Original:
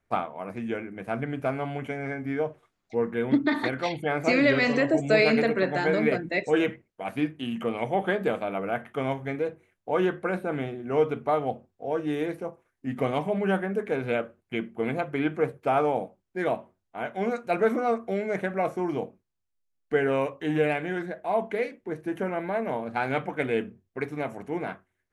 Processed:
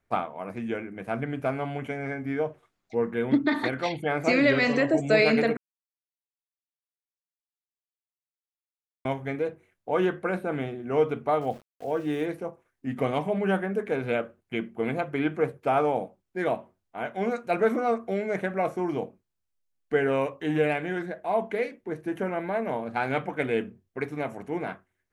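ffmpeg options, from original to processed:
ffmpeg -i in.wav -filter_complex "[0:a]asettb=1/sr,asplit=3[link_01][link_02][link_03];[link_01]atrim=end=11.414[link_04];[link_02]atrim=start=11.41:end=12.25,asetpts=PTS-STARTPTS,afade=type=in:duration=0.004:curve=qsin,afade=type=out:start_time=0.836:duration=0.004:curve=qsin,aeval=exprs='val(0)*gte(abs(val(0)),0.00398)':channel_layout=same[link_05];[link_03]atrim=start=12.246[link_06];[link_04][link_05]acrossfade=duration=0.004:curve1=hsin:curve2=qsin[link_07];[link_07][link_06]acrossfade=duration=0.004:curve1=qsin:curve2=hsin,asplit=3[link_08][link_09][link_10];[link_08]atrim=end=5.57,asetpts=PTS-STARTPTS,afade=type=out:start_time=5.566:duration=0.004:curve=hsin[link_11];[link_09]atrim=start=5.57:end=9.05,asetpts=PTS-STARTPTS,volume=0[link_12];[link_10]atrim=start=9.05,asetpts=PTS-STARTPTS,afade=type=in:duration=0.004:curve=hsin[link_13];[link_11][link_12][link_13]concat=n=3:v=0:a=1" out.wav

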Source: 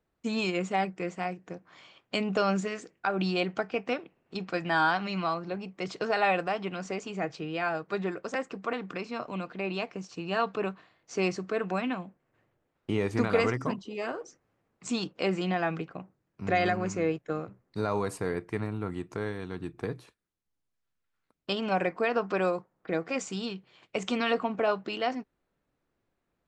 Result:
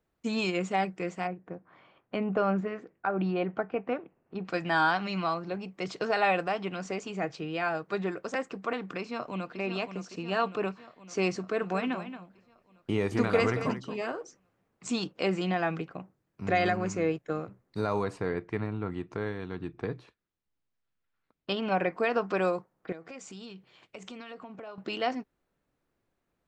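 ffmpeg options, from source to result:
ffmpeg -i in.wav -filter_complex "[0:a]asettb=1/sr,asplit=3[link_01][link_02][link_03];[link_01]atrim=end=1.274[link_04];[link_02]atrim=start=1.27:end=4.45,asetpts=PTS-STARTPTS,afade=type=in:duration=0.004:curve=qsin,afade=type=out:start_time=3.176:duration=0.004:curve=qsin,lowpass=1600[link_05];[link_03]atrim=start=4.446[link_06];[link_04][link_05]acrossfade=duration=0.004:curve1=hsin:curve2=qsin[link_07];[link_07][link_06]acrossfade=duration=0.004:curve1=qsin:curve2=hsin,asplit=2[link_08][link_09];[link_09]afade=type=in:start_time=8.99:duration=0.01,afade=type=out:start_time=9.59:duration=0.01,aecho=0:1:560|1120|1680|2240|2800|3360|3920|4480|5040:0.354813|0.230629|0.149909|0.0974406|0.0633364|0.0411687|0.0267596|0.0173938|0.0113059[link_10];[link_08][link_10]amix=inputs=2:normalize=0,asplit=3[link_11][link_12][link_13];[link_11]afade=type=out:start_time=11.61:duration=0.02[link_14];[link_12]aecho=1:1:226:0.282,afade=type=in:start_time=11.61:duration=0.02,afade=type=out:start_time=14.02:duration=0.02[link_15];[link_13]afade=type=in:start_time=14.02:duration=0.02[link_16];[link_14][link_15][link_16]amix=inputs=3:normalize=0,asettb=1/sr,asplit=3[link_17][link_18][link_19];[link_17]atrim=end=18.044[link_20];[link_18]atrim=start=18.04:end=21.93,asetpts=PTS-STARTPTS,afade=type=in:duration=0.004:curve=qsin,afade=type=out:start_time=3.886:duration=0.004:curve=qsin,lowpass=4300[link_21];[link_19]atrim=start=21.926[link_22];[link_20][link_21]acrossfade=duration=0.004:curve1=hsin:curve2=qsin[link_23];[link_23][link_22]acrossfade=duration=0.004:curve1=qsin:curve2=hsin,asettb=1/sr,asplit=3[link_24][link_25][link_26];[link_24]atrim=end=22.924[link_27];[link_25]atrim=start=22.92:end=24.78,asetpts=PTS-STARTPTS,afade=type=in:duration=0.004:curve=qsin,afade=type=out:start_time=1.856:duration=0.004:curve=qsin,acompressor=threshold=-43dB:ratio=4:attack=3.2:release=140:knee=1:detection=peak[link_28];[link_26]atrim=start=24.776[link_29];[link_27][link_28]acrossfade=duration=0.004:curve1=hsin:curve2=qsin[link_30];[link_30][link_29]acrossfade=duration=0.004:curve1=qsin:curve2=hsin" out.wav

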